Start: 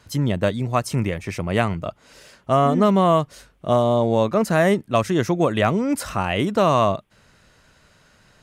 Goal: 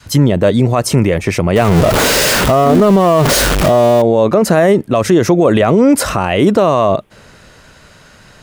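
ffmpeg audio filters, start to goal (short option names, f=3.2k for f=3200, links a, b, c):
-filter_complex "[0:a]asettb=1/sr,asplit=3[a][b][c];[a]atrim=end=1.564[d];[b]atrim=start=1.56:end=4.02,asetpts=PTS-STARTPTS,afade=t=in:d=0.004:c=qsin,afade=t=out:st=2.456:d=0.004:c=qsin,aeval=exprs='val(0)+0.5*0.0944*sgn(val(0))':c=same[e];[c]atrim=start=4.016[f];[d][e]acrossfade=d=0.004:c1=hsin:c2=qsin[g];[g][f]acrossfade=d=0.004:c1=qsin:c2=hsin,adynamicequalizer=threshold=0.0355:dfrequency=450:dqfactor=0.88:tfrequency=450:tqfactor=0.88:attack=5:release=100:ratio=0.375:range=3.5:mode=boostabove:tftype=bell,alimiter=level_in=14dB:limit=-1dB:release=50:level=0:latency=1,volume=-1dB"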